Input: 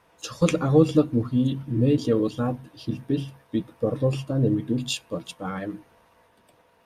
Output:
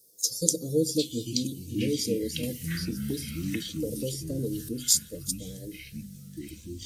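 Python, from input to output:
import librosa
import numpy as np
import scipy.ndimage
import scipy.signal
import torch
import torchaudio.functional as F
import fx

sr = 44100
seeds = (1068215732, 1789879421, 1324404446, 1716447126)

y = scipy.signal.sosfilt(scipy.signal.ellip(3, 1.0, 40, [460.0, 4800.0], 'bandstop', fs=sr, output='sos'), x)
y = fx.high_shelf(y, sr, hz=7600.0, db=11.5)
y = fx.echo_pitch(y, sr, ms=635, semitones=-7, count=3, db_per_echo=-6.0)
y = fx.tilt_eq(y, sr, slope=3.5)
y = fx.band_squash(y, sr, depth_pct=100, at=(2.43, 4.69))
y = F.gain(torch.from_numpy(y), -1.5).numpy()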